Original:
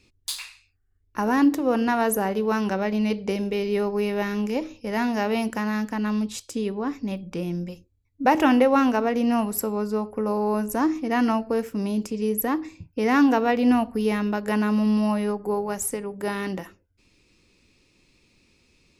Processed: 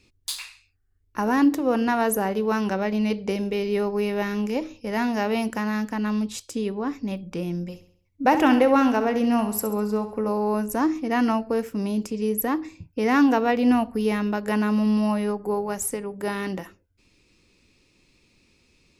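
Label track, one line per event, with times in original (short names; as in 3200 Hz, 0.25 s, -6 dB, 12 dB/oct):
7.670000	10.290000	feedback echo 67 ms, feedback 45%, level -11.5 dB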